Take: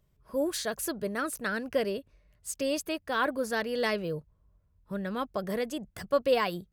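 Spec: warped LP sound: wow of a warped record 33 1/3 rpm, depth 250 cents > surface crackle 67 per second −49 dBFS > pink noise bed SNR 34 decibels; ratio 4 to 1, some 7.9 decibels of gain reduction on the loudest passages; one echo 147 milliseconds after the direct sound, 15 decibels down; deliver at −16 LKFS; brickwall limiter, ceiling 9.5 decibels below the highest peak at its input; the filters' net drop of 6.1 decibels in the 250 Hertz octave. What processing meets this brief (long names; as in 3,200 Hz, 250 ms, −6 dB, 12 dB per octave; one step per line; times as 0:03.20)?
parametric band 250 Hz −8 dB
downward compressor 4 to 1, threshold −31 dBFS
brickwall limiter −30.5 dBFS
single-tap delay 147 ms −15 dB
wow of a warped record 33 1/3 rpm, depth 250 cents
surface crackle 67 per second −49 dBFS
pink noise bed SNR 34 dB
level +24 dB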